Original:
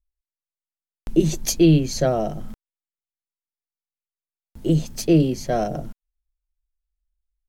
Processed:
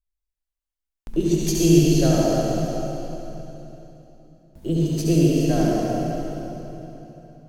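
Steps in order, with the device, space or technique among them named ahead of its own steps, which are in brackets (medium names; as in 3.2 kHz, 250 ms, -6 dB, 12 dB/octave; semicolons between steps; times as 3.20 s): tunnel (flutter echo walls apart 11.5 m, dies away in 0.57 s; reverberation RT60 3.4 s, pre-delay 66 ms, DRR -4 dB); trim -5.5 dB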